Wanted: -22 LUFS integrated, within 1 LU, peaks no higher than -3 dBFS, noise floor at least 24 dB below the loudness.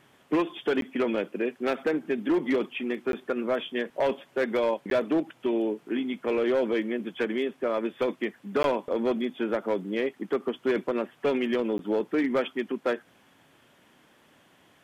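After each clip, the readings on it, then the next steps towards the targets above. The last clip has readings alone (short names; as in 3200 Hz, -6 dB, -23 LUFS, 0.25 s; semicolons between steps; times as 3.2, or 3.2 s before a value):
clipped 1.4%; flat tops at -19.0 dBFS; dropouts 5; longest dropout 12 ms; loudness -28.5 LUFS; peak -19.0 dBFS; loudness target -22.0 LUFS
-> clip repair -19 dBFS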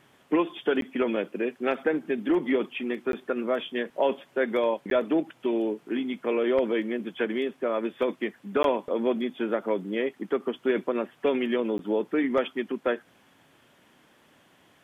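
clipped 0.0%; dropouts 5; longest dropout 12 ms
-> interpolate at 0.81/3.12/4.9/8.63/11.78, 12 ms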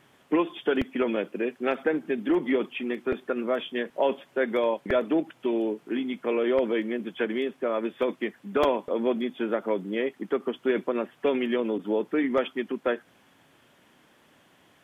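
dropouts 0; loudness -28.0 LUFS; peak -10.0 dBFS; loudness target -22.0 LUFS
-> gain +6 dB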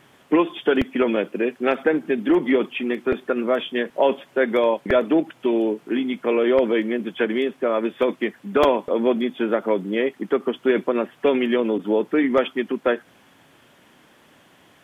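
loudness -22.0 LUFS; peak -4.0 dBFS; noise floor -55 dBFS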